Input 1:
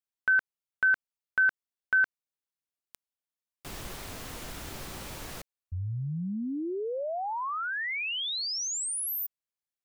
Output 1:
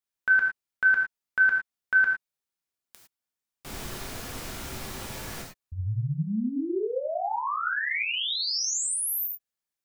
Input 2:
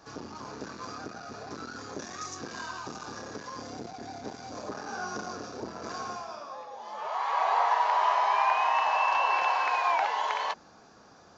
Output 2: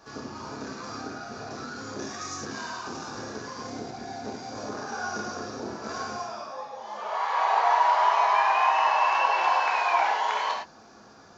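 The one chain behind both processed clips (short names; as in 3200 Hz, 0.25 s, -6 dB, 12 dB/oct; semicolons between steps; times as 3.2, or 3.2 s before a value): non-linear reverb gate 0.13 s flat, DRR -1 dB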